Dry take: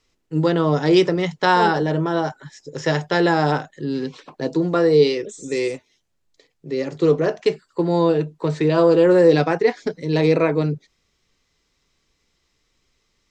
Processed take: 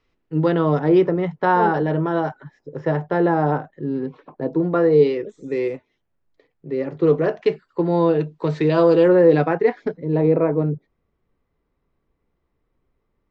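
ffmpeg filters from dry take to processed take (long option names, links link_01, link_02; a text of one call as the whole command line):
ffmpeg -i in.wav -af "asetnsamples=nb_out_samples=441:pad=0,asendcmd='0.79 lowpass f 1400;1.74 lowpass f 2200;2.43 lowpass f 1200;4.6 lowpass f 1800;7.07 lowpass f 2700;8.2 lowpass f 4400;9.08 lowpass f 2000;9.97 lowpass f 1000',lowpass=2600" out.wav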